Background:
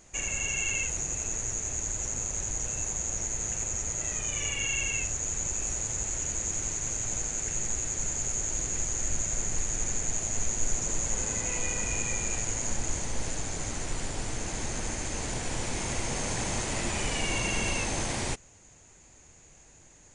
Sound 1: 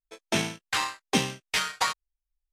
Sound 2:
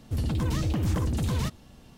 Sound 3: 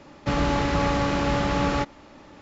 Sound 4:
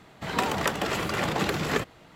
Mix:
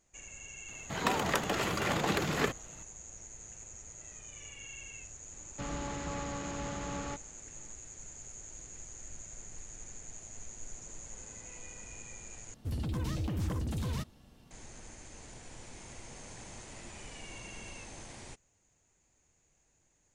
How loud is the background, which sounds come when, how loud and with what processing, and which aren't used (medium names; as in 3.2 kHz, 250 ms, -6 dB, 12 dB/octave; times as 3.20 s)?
background -17 dB
0.68 s: add 4 -4 dB
5.32 s: add 3 -15.5 dB
12.54 s: replace with 2 -7.5 dB
not used: 1